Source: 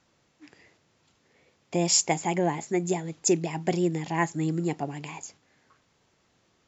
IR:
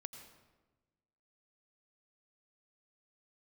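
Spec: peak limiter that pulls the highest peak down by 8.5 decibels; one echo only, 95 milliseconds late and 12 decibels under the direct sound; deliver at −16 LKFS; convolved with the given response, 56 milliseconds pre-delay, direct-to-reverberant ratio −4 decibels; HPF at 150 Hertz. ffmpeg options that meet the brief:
-filter_complex "[0:a]highpass=150,alimiter=limit=-17dB:level=0:latency=1,aecho=1:1:95:0.251,asplit=2[link_01][link_02];[1:a]atrim=start_sample=2205,adelay=56[link_03];[link_02][link_03]afir=irnorm=-1:irlink=0,volume=8dB[link_04];[link_01][link_04]amix=inputs=2:normalize=0,volume=8dB"

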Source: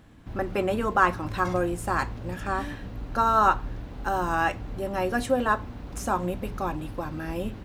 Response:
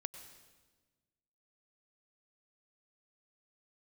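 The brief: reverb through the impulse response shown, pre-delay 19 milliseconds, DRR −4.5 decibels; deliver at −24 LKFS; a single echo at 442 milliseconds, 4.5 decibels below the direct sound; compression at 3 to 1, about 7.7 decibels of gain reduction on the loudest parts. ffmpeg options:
-filter_complex "[0:a]acompressor=threshold=-26dB:ratio=3,aecho=1:1:442:0.596,asplit=2[link_01][link_02];[1:a]atrim=start_sample=2205,adelay=19[link_03];[link_02][link_03]afir=irnorm=-1:irlink=0,volume=7dB[link_04];[link_01][link_04]amix=inputs=2:normalize=0"

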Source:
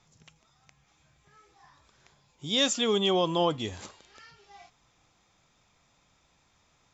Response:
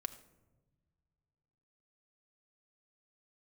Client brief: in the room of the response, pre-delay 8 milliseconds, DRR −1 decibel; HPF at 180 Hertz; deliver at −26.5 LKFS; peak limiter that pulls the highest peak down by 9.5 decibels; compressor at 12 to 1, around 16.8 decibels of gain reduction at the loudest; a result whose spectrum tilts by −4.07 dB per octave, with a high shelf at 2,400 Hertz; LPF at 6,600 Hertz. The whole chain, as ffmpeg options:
-filter_complex "[0:a]highpass=180,lowpass=6600,highshelf=frequency=2400:gain=-7,acompressor=threshold=-39dB:ratio=12,alimiter=level_in=16dB:limit=-24dB:level=0:latency=1,volume=-16dB,asplit=2[link_01][link_02];[1:a]atrim=start_sample=2205,adelay=8[link_03];[link_02][link_03]afir=irnorm=-1:irlink=0,volume=3dB[link_04];[link_01][link_04]amix=inputs=2:normalize=0,volume=21.5dB"

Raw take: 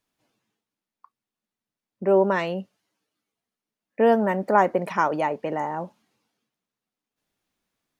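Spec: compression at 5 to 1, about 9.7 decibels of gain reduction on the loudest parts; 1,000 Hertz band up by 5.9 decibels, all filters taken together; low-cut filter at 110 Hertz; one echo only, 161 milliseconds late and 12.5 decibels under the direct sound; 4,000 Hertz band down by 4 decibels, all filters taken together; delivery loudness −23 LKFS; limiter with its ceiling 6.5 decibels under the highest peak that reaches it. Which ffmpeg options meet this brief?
ffmpeg -i in.wav -af "highpass=110,equalizer=frequency=1000:width_type=o:gain=7.5,equalizer=frequency=4000:width_type=o:gain=-7.5,acompressor=threshold=-19dB:ratio=5,alimiter=limit=-15.5dB:level=0:latency=1,aecho=1:1:161:0.237,volume=4dB" out.wav

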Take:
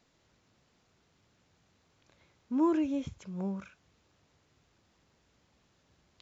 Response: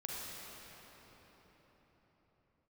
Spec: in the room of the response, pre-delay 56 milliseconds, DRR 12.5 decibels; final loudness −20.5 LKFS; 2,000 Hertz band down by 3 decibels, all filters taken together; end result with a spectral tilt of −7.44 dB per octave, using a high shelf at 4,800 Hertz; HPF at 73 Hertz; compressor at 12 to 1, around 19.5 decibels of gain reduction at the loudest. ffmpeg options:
-filter_complex "[0:a]highpass=73,equalizer=frequency=2000:width_type=o:gain=-3,highshelf=frequency=4800:gain=-6.5,acompressor=threshold=-43dB:ratio=12,asplit=2[link_01][link_02];[1:a]atrim=start_sample=2205,adelay=56[link_03];[link_02][link_03]afir=irnorm=-1:irlink=0,volume=-13.5dB[link_04];[link_01][link_04]amix=inputs=2:normalize=0,volume=28dB"

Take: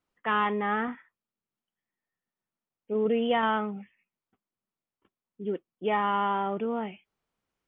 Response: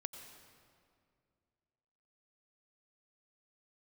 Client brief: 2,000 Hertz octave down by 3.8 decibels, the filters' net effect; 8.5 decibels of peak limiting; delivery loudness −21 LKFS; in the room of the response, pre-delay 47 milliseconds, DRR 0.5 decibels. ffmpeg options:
-filter_complex "[0:a]equalizer=frequency=2000:width_type=o:gain=-5,alimiter=limit=-24dB:level=0:latency=1,asplit=2[link_01][link_02];[1:a]atrim=start_sample=2205,adelay=47[link_03];[link_02][link_03]afir=irnorm=-1:irlink=0,volume=2dB[link_04];[link_01][link_04]amix=inputs=2:normalize=0,volume=10.5dB"

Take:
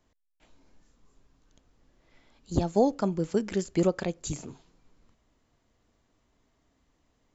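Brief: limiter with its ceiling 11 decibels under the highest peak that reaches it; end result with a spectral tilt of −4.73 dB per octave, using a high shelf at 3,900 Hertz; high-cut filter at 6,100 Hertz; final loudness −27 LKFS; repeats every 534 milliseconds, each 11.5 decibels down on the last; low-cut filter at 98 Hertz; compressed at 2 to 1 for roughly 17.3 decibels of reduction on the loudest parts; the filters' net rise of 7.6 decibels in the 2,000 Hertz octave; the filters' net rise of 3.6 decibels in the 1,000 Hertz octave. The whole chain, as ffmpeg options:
ffmpeg -i in.wav -af "highpass=98,lowpass=6100,equalizer=frequency=1000:width_type=o:gain=3.5,equalizer=frequency=2000:width_type=o:gain=7.5,highshelf=frequency=3900:gain=4.5,acompressor=threshold=-50dB:ratio=2,alimiter=level_in=13dB:limit=-24dB:level=0:latency=1,volume=-13dB,aecho=1:1:534|1068|1602:0.266|0.0718|0.0194,volume=23dB" out.wav

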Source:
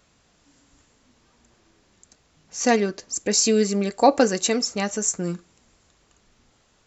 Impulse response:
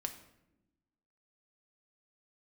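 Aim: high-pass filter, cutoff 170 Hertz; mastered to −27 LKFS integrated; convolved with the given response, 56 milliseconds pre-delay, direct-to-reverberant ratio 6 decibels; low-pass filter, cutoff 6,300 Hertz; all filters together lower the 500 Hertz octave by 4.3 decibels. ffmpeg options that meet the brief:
-filter_complex "[0:a]highpass=170,lowpass=6300,equalizer=frequency=500:width_type=o:gain=-5,asplit=2[link_01][link_02];[1:a]atrim=start_sample=2205,adelay=56[link_03];[link_02][link_03]afir=irnorm=-1:irlink=0,volume=-5.5dB[link_04];[link_01][link_04]amix=inputs=2:normalize=0,volume=-3.5dB"

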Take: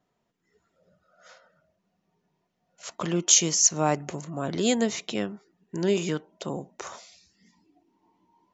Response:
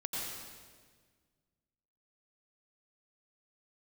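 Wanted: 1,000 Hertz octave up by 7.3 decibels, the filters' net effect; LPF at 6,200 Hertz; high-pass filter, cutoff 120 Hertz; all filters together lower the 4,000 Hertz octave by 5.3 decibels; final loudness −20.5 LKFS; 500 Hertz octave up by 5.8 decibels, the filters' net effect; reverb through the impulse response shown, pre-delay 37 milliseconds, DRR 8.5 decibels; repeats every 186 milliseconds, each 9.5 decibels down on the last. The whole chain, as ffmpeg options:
-filter_complex "[0:a]highpass=120,lowpass=6200,equalizer=frequency=500:width_type=o:gain=5.5,equalizer=frequency=1000:width_type=o:gain=8,equalizer=frequency=4000:width_type=o:gain=-7,aecho=1:1:186|372|558|744:0.335|0.111|0.0365|0.012,asplit=2[link_01][link_02];[1:a]atrim=start_sample=2205,adelay=37[link_03];[link_02][link_03]afir=irnorm=-1:irlink=0,volume=-11.5dB[link_04];[link_01][link_04]amix=inputs=2:normalize=0,volume=3.5dB"

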